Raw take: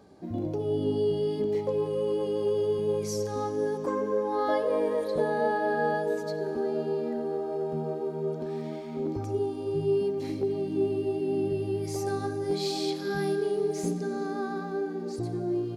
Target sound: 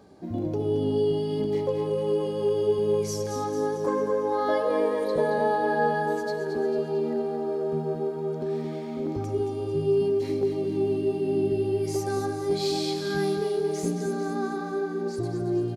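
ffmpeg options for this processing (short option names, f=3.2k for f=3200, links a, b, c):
-af "aecho=1:1:223|446|669|892|1115|1338:0.422|0.219|0.114|0.0593|0.0308|0.016,volume=2dB"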